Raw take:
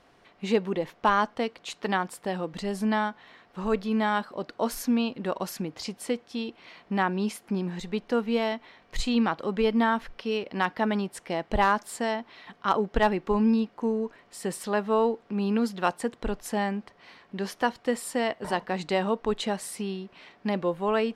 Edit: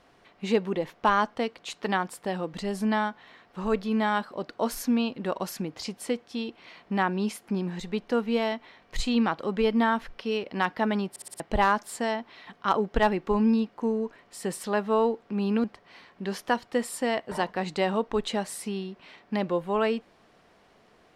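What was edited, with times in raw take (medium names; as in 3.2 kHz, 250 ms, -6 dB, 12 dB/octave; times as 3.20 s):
11.10 s: stutter in place 0.06 s, 5 plays
15.64–16.77 s: delete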